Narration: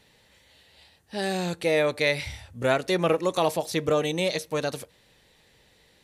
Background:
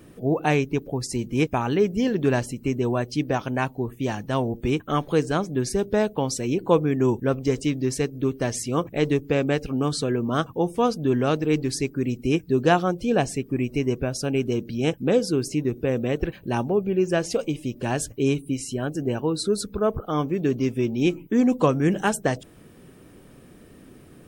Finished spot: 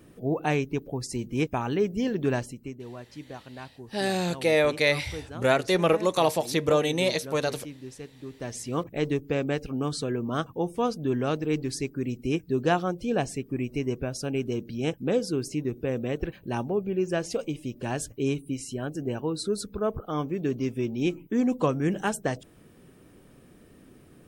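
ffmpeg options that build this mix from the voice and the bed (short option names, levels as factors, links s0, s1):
-filter_complex "[0:a]adelay=2800,volume=1.12[s0];[1:a]volume=2.37,afade=t=out:st=2.33:d=0.44:silence=0.237137,afade=t=in:st=8.26:d=0.48:silence=0.251189[s1];[s0][s1]amix=inputs=2:normalize=0"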